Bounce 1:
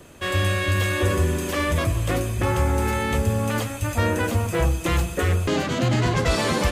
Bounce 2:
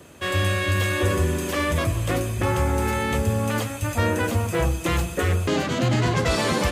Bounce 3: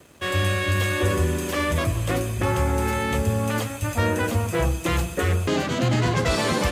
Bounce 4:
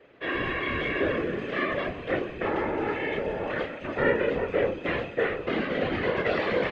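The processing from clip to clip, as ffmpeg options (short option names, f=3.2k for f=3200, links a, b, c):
-af "highpass=63"
-af "aeval=exprs='sgn(val(0))*max(abs(val(0))-0.00237,0)':c=same"
-filter_complex "[0:a]highpass=210,equalizer=f=490:t=q:w=4:g=8,equalizer=f=960:t=q:w=4:g=-5,equalizer=f=1.9k:t=q:w=4:g=6,lowpass=f=3.2k:w=0.5412,lowpass=f=3.2k:w=1.3066,asplit=2[a][b];[b]adelay=30,volume=-3dB[c];[a][c]amix=inputs=2:normalize=0,afftfilt=real='hypot(re,im)*cos(2*PI*random(0))':imag='hypot(re,im)*sin(2*PI*random(1))':win_size=512:overlap=0.75"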